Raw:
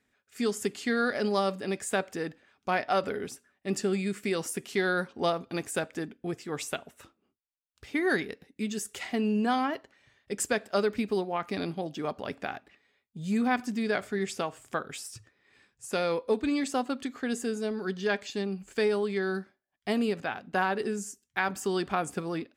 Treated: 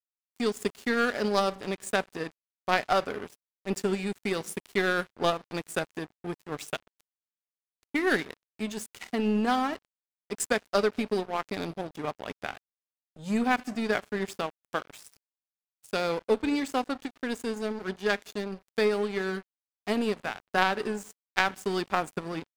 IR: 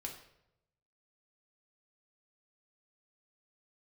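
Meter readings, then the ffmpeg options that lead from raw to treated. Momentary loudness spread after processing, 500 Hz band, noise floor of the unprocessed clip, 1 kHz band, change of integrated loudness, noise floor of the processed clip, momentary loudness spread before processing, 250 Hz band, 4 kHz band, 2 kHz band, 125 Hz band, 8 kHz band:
12 LU, +0.5 dB, −80 dBFS, +1.5 dB, +1.0 dB, below −85 dBFS, 10 LU, −0.5 dB, +2.5 dB, +2.0 dB, −1.0 dB, −2.5 dB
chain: -filter_complex "[0:a]aeval=exprs='0.237*(cos(1*acos(clip(val(0)/0.237,-1,1)))-cos(1*PI/2))+0.0473*(cos(2*acos(clip(val(0)/0.237,-1,1)))-cos(2*PI/2))+0.0335*(cos(3*acos(clip(val(0)/0.237,-1,1)))-cos(3*PI/2))+0.00944*(cos(4*acos(clip(val(0)/0.237,-1,1)))-cos(4*PI/2))':channel_layout=same,asplit=2[link_01][link_02];[1:a]atrim=start_sample=2205,asetrate=25578,aresample=44100[link_03];[link_02][link_03]afir=irnorm=-1:irlink=0,volume=-15dB[link_04];[link_01][link_04]amix=inputs=2:normalize=0,aeval=exprs='sgn(val(0))*max(abs(val(0))-0.0075,0)':channel_layout=same,volume=5dB"

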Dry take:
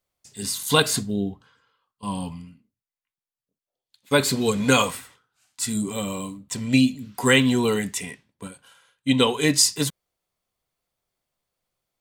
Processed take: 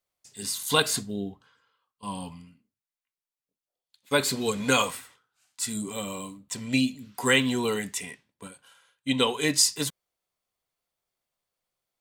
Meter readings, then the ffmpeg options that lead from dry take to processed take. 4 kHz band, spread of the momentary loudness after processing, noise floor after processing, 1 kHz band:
−3.0 dB, 16 LU, below −85 dBFS, −3.5 dB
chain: -af "lowshelf=frequency=290:gain=-6.5,volume=-3dB"

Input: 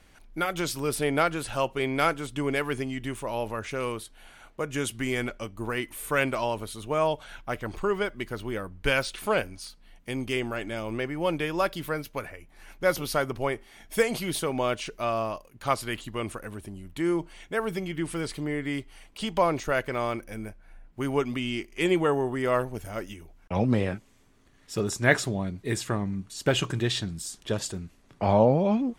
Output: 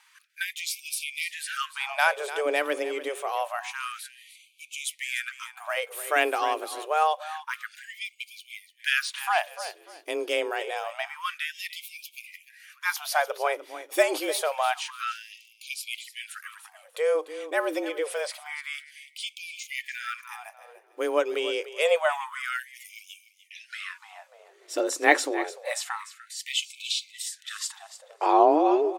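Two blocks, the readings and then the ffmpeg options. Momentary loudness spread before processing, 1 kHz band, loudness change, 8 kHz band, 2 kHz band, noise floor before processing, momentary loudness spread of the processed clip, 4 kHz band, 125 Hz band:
12 LU, +3.0 dB, +0.5 dB, +2.5 dB, +2.5 dB, −57 dBFS, 18 LU, +2.5 dB, below −40 dB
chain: -af "aecho=1:1:296|592|888:0.2|0.0479|0.0115,afreqshift=150,afftfilt=real='re*gte(b*sr/1024,260*pow(2200/260,0.5+0.5*sin(2*PI*0.27*pts/sr)))':imag='im*gte(b*sr/1024,260*pow(2200/260,0.5+0.5*sin(2*PI*0.27*pts/sr)))':win_size=1024:overlap=0.75,volume=2dB"

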